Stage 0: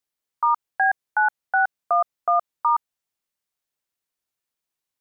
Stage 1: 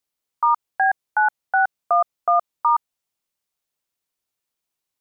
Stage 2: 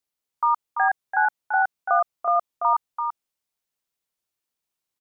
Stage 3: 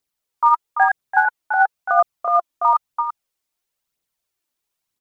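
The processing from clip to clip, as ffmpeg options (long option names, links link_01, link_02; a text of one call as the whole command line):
ffmpeg -i in.wav -af "equalizer=frequency=1700:width_type=o:width=0.52:gain=-3,volume=2.5dB" out.wav
ffmpeg -i in.wav -af "aecho=1:1:338:0.473,volume=-3dB" out.wav
ffmpeg -i in.wav -af "aphaser=in_gain=1:out_gain=1:delay=3.5:decay=0.43:speed=1:type=triangular,volume=3.5dB" out.wav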